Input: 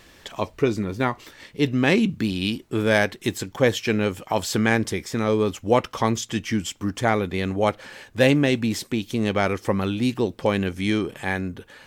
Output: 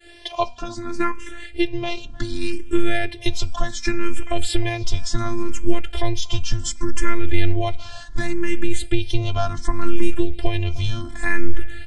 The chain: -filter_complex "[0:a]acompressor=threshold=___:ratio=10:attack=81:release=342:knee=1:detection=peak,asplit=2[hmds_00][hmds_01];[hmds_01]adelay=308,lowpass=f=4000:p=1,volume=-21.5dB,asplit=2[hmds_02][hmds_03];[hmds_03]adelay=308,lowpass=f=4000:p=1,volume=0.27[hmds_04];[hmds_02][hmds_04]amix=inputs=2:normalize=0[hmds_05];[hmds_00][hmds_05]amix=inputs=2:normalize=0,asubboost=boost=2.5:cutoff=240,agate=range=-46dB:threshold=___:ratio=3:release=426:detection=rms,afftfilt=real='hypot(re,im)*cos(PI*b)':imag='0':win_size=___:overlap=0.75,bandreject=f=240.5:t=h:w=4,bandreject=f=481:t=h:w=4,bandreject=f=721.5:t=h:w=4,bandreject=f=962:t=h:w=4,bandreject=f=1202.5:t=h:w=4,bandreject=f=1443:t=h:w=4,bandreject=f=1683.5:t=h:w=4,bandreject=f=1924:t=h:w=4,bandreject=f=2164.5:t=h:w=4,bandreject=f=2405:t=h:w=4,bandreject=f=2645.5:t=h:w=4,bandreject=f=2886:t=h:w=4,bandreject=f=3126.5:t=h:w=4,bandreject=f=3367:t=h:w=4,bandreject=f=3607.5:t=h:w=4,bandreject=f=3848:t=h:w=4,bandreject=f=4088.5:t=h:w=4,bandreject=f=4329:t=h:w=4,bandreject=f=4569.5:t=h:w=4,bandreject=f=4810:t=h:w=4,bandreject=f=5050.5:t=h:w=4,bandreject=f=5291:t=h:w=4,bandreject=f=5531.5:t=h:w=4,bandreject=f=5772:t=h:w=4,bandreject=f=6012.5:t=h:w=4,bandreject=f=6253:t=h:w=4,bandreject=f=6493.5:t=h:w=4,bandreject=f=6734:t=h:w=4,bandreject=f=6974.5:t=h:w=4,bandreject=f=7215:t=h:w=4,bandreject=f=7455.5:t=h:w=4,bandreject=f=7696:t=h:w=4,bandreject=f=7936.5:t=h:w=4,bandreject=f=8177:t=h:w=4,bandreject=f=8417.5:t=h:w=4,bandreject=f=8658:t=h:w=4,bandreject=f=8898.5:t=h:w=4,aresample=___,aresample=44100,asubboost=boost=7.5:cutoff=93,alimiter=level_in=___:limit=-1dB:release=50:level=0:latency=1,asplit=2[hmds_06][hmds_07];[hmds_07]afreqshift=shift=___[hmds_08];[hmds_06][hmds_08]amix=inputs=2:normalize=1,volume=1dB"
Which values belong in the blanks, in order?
-27dB, -47dB, 512, 22050, 10dB, 0.68